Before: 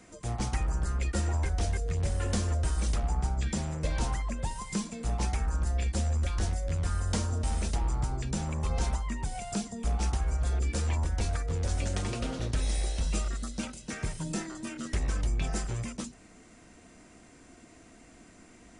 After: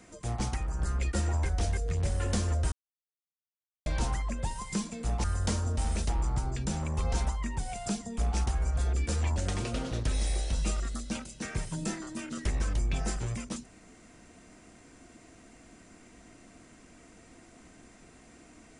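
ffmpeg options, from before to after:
-filter_complex "[0:a]asplit=7[a][b][c][d][e][f][g];[a]atrim=end=0.542[h];[b]atrim=start=0.538:end=0.792,asetpts=PTS-STARTPTS,volume=-3.5dB[i];[c]atrim=start=0.788:end=2.72,asetpts=PTS-STARTPTS,afade=t=out:st=1.928:d=0.004:c=hsin[j];[d]atrim=start=2.72:end=3.86,asetpts=PTS-STARTPTS,volume=0[k];[e]atrim=start=3.86:end=5.242,asetpts=PTS-STARTPTS,afade=t=in:d=0.004:c=hsin[l];[f]atrim=start=6.898:end=11.022[m];[g]atrim=start=11.838[n];[h][i]acrossfade=d=0.004:c1=hsin:c2=hsin[o];[j][k][l]concat=n=3:v=0:a=1[p];[o][p]acrossfade=d=0.004:c1=hsin:c2=hsin[q];[q][m]acrossfade=d=0.004:c1=hsin:c2=hsin[r];[r][n]acrossfade=d=0.004:c1=hsin:c2=hsin"

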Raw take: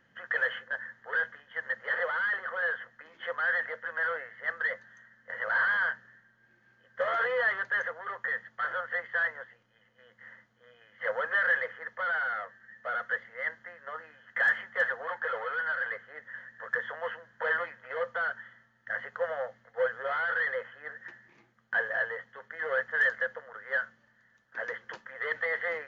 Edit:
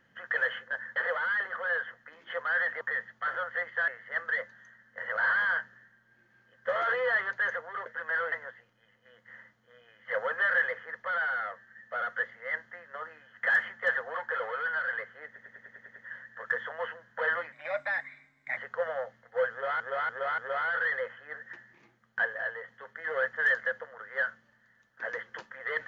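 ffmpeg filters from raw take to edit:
-filter_complex "[0:a]asplit=20[a][b][c][d][e][f][g][h][i][j][k][l][m][n][o][p][q][r][s][t];[a]atrim=end=0.962[u];[b]atrim=start=1.888:end=3.742[v];[c]atrim=start=8.178:end=9.252[w];[d]atrim=start=4.198:end=8.182[x];[e]atrim=start=3.738:end=4.202[y];[f]atrim=start=9.248:end=16.292[z];[g]atrim=start=16.188:end=16.292[aa];[h]atrim=start=16.188:end=16.292[ab];[i]atrim=start=16.188:end=16.292[ac];[j]atrim=start=16.188:end=16.292[ad];[k]atrim=start=16.188:end=16.292[ae];[l]atrim=start=16.188:end=16.292[af];[m]atrim=start=16.188:end=17.754[ag];[n]atrim=start=17.75:end=18.99,asetpts=PTS-STARTPTS,asetrate=52038,aresample=44100,atrim=end_sample=46342,asetpts=PTS-STARTPTS[ah];[o]atrim=start=18.986:end=20.222[ai];[p]atrim=start=19.928:end=20.222[aj];[q]atrim=start=19.928:end=20.222[ak];[r]atrim=start=19.928:end=21.802[al];[s]atrim=start=21.798:end=22.232,asetpts=PTS-STARTPTS,volume=-4dB[am];[t]atrim=start=22.228[an];[u][v]acrossfade=d=0.004:c1=hsin:c2=hsin[ao];[ao][w]acrossfade=d=0.004:c1=hsin:c2=hsin[ap];[ap][x]acrossfade=d=0.004:c1=hsin:c2=hsin[aq];[aq][y]acrossfade=d=0.004:c1=hsin:c2=hsin[ar];[ar][z]acrossfade=d=0.004:c1=hsin:c2=hsin[as];[as][aa]acrossfade=d=0.004:c1=hsin:c2=hsin[at];[at][ab]acrossfade=d=0.004:c1=hsin:c2=hsin[au];[au][ac]acrossfade=d=0.004:c1=hsin:c2=hsin[av];[av][ad]acrossfade=d=0.004:c1=hsin:c2=hsin[aw];[aw][ae]acrossfade=d=0.004:c1=hsin:c2=hsin[ax];[ax][af]acrossfade=d=0.004:c1=hsin:c2=hsin[ay];[ay][ag]acrossfade=d=0.004:c1=hsin:c2=hsin[az];[az][ah]acrossfade=d=0.004:c1=hsin:c2=hsin[ba];[ba][ai]acrossfade=d=0.004:c1=hsin:c2=hsin[bb];[bb][aj]acrossfade=d=0.004:c1=hsin:c2=hsin[bc];[bc][ak]acrossfade=d=0.004:c1=hsin:c2=hsin[bd];[bd][al]acrossfade=d=0.004:c1=hsin:c2=hsin[be];[be][am]acrossfade=d=0.004:c1=hsin:c2=hsin[bf];[bf][an]acrossfade=d=0.004:c1=hsin:c2=hsin"

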